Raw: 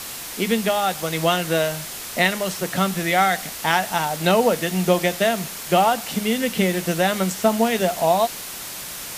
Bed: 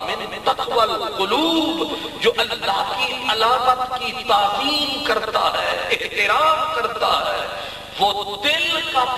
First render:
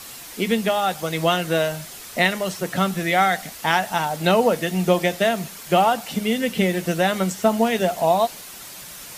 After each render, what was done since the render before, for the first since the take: denoiser 7 dB, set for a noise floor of -34 dBFS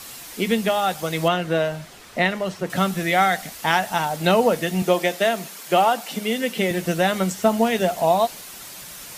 1.28–2.7 LPF 2500 Hz 6 dB/oct; 4.82–6.71 HPF 240 Hz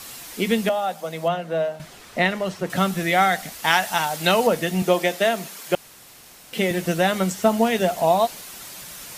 0.69–1.8 rippled Chebyshev high-pass 160 Hz, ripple 9 dB; 3.64–4.47 tilt shelf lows -4.5 dB; 5.75–6.53 room tone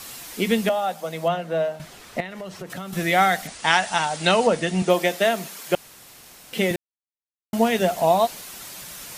2.2–2.93 compressor 5:1, threshold -31 dBFS; 3.47–4.9 brick-wall FIR low-pass 10000 Hz; 6.76–7.53 mute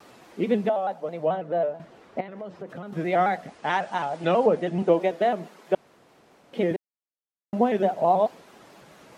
band-pass 410 Hz, Q 0.72; shaped vibrato square 4.6 Hz, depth 100 cents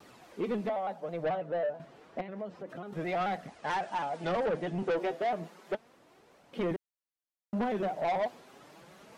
flange 0.3 Hz, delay 0.2 ms, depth 8.2 ms, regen +50%; soft clip -26 dBFS, distortion -9 dB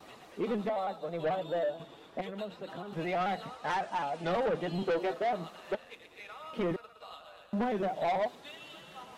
add bed -30.5 dB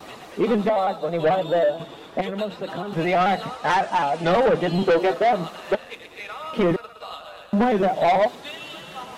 gain +12 dB

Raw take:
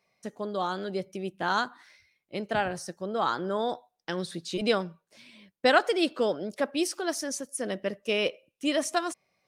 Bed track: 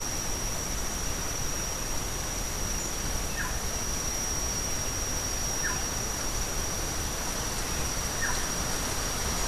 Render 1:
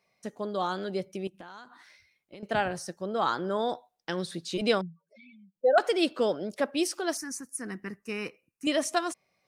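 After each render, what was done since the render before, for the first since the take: 1.27–2.43 compressor 10:1, threshold -42 dBFS; 4.81–5.78 spectral contrast raised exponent 3.4; 7.17–8.67 fixed phaser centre 1400 Hz, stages 4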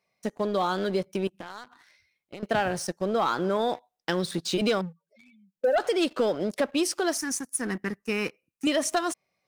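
sample leveller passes 2; compressor 3:1, threshold -23 dBFS, peak gain reduction 7.5 dB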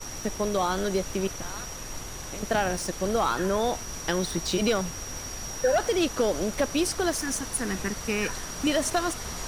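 add bed track -5.5 dB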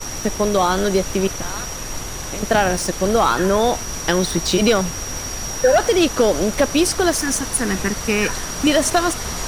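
gain +9 dB

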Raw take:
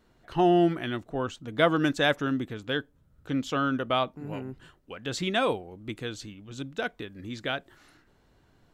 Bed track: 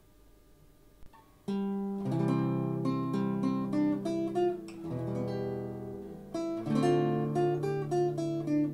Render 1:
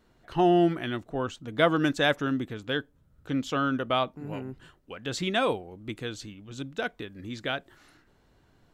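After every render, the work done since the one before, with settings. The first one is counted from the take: nothing audible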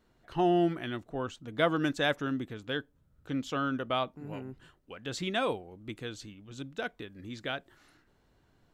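gain -4.5 dB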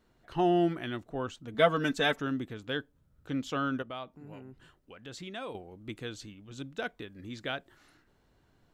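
1.54–2.2 comb 4.5 ms, depth 76%; 3.82–5.55 compressor 1.5:1, threshold -54 dBFS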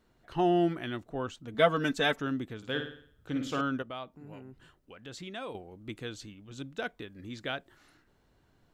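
2.57–3.61 flutter echo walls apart 9.3 m, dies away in 0.55 s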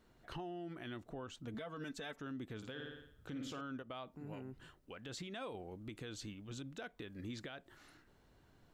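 compressor 5:1, threshold -39 dBFS, peak gain reduction 19 dB; limiter -37 dBFS, peak gain reduction 11 dB

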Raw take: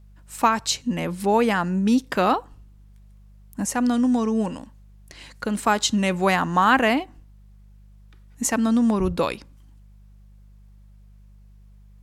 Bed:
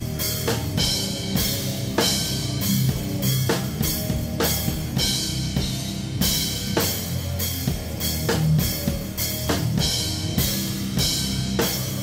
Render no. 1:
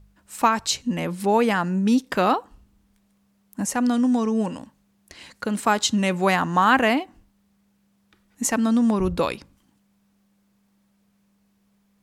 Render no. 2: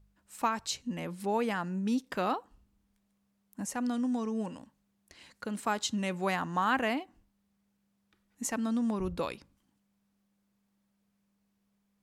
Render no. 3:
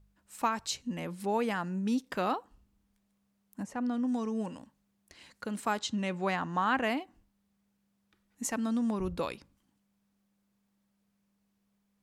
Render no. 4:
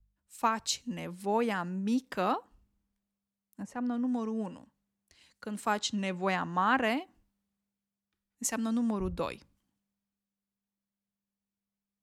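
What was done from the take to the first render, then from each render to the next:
de-hum 50 Hz, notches 3
gain -11 dB
3.62–4.07 LPF 1300 Hz -> 2500 Hz 6 dB/oct; 5.79–6.84 air absorption 61 m
three-band expander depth 40%

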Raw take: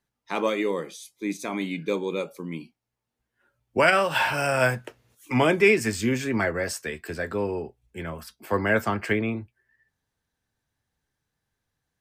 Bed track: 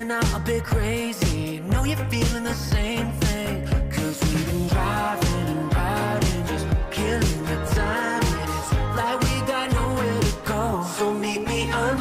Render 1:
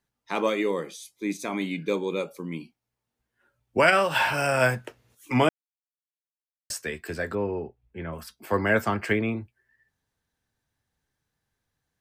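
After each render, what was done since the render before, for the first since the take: 5.49–6.7 mute; 7.35–8.13 air absorption 360 m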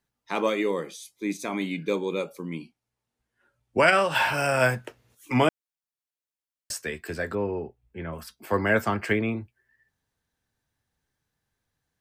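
2.5–4.15 LPF 12000 Hz 24 dB/oct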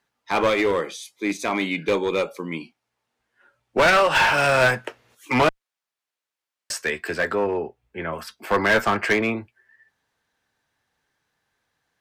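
overdrive pedal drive 17 dB, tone 2900 Hz, clips at -4.5 dBFS; one-sided clip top -17 dBFS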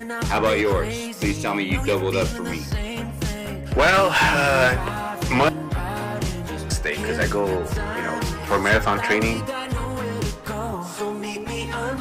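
add bed track -4 dB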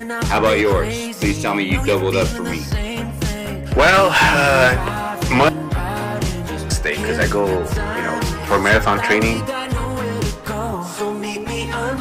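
gain +4.5 dB; limiter -3 dBFS, peak gain reduction 1 dB

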